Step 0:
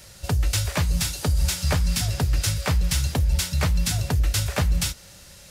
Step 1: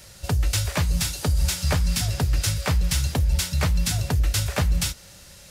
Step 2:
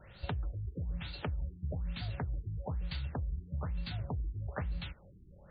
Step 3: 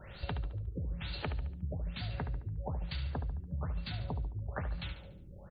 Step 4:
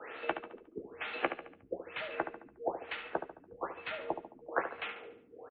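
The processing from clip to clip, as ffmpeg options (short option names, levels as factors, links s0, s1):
-af anull
-af "acompressor=threshold=0.0355:ratio=6,afftfilt=real='re*lt(b*sr/1024,410*pow(4800/410,0.5+0.5*sin(2*PI*1.1*pts/sr)))':imag='im*lt(b*sr/1024,410*pow(4800/410,0.5+0.5*sin(2*PI*1.1*pts/sr)))':win_size=1024:overlap=0.75,volume=0.562"
-filter_complex "[0:a]acompressor=threshold=0.00891:ratio=3,asplit=2[s0][s1];[s1]aecho=0:1:72|144|216|288|360:0.355|0.16|0.0718|0.0323|0.0145[s2];[s0][s2]amix=inputs=2:normalize=0,volume=1.78"
-filter_complex "[0:a]asplit=2[s0][s1];[s1]adelay=14,volume=0.299[s2];[s0][s2]amix=inputs=2:normalize=0,highpass=f=420:t=q:w=0.5412,highpass=f=420:t=q:w=1.307,lowpass=f=2800:t=q:w=0.5176,lowpass=f=2800:t=q:w=0.7071,lowpass=f=2800:t=q:w=1.932,afreqshift=-89,volume=2.82"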